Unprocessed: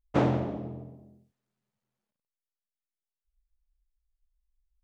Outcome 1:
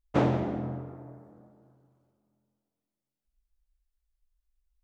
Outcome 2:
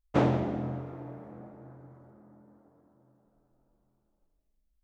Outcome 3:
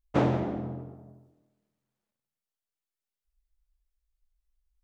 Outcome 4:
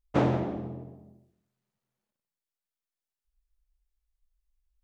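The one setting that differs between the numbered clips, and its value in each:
plate-style reverb, RT60: 2.5 s, 5.3 s, 1.2 s, 0.53 s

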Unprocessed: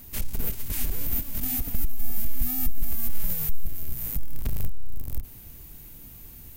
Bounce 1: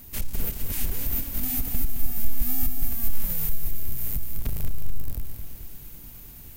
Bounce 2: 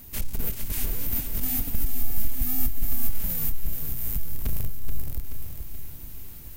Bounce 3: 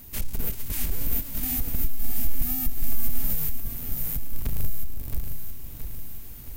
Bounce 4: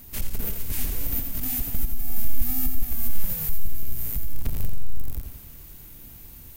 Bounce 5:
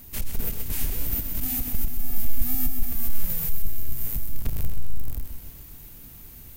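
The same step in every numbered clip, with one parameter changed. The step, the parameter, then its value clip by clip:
bit-crushed delay, time: 216 ms, 429 ms, 671 ms, 86 ms, 129 ms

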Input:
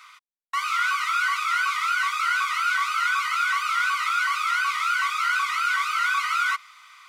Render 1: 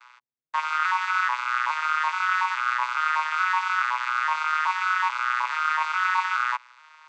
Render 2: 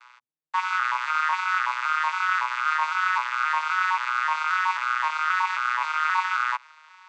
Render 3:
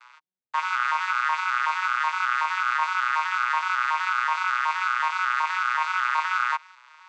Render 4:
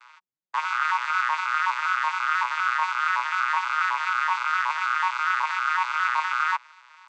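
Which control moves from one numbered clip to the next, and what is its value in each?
vocoder on a broken chord, a note every: 424 ms, 265 ms, 125 ms, 81 ms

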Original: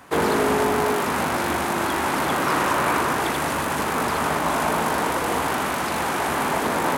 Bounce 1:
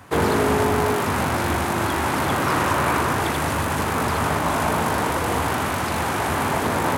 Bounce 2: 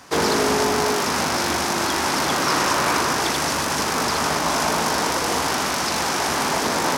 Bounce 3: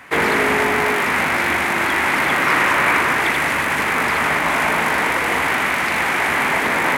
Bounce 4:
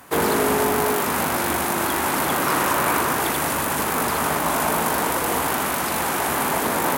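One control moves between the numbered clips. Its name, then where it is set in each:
peaking EQ, frequency: 95 Hz, 5.4 kHz, 2.1 kHz, 16 kHz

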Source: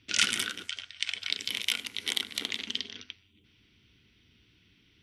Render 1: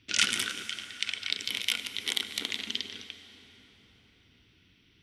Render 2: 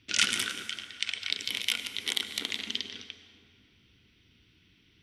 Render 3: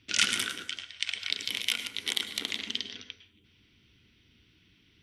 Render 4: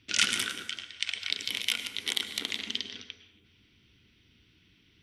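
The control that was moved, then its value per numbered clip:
plate-style reverb, RT60: 5.2 s, 2.4 s, 0.5 s, 1.1 s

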